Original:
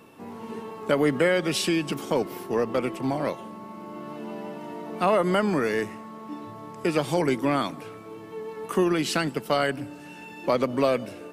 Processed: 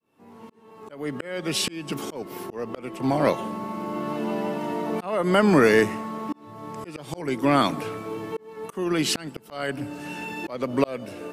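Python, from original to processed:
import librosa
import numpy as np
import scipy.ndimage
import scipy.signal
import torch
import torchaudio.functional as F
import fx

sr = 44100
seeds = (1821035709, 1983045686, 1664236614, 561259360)

y = fx.fade_in_head(x, sr, length_s=2.11)
y = fx.auto_swell(y, sr, attack_ms=612.0)
y = y * librosa.db_to_amplitude(8.5)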